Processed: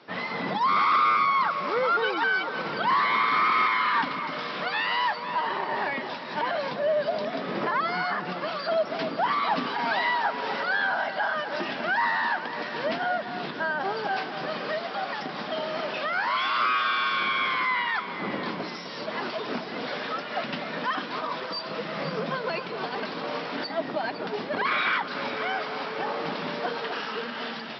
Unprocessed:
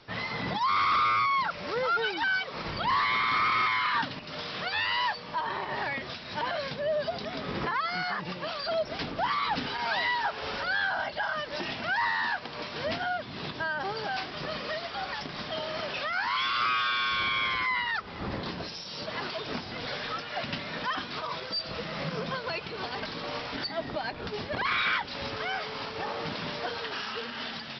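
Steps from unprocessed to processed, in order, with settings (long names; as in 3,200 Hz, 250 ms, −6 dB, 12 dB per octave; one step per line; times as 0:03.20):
high-pass filter 180 Hz 24 dB per octave
high-shelf EQ 3,500 Hz −11 dB
delay that swaps between a low-pass and a high-pass 255 ms, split 1,400 Hz, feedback 70%, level −8.5 dB
level +4.5 dB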